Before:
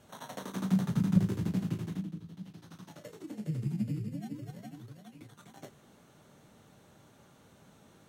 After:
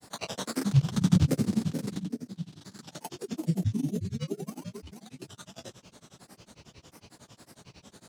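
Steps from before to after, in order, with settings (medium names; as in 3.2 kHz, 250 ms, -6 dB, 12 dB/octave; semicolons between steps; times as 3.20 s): high-order bell 5.7 kHz +8.5 dB; granulator, grains 11 per s, spray 15 ms, pitch spread up and down by 7 st; trim +8.5 dB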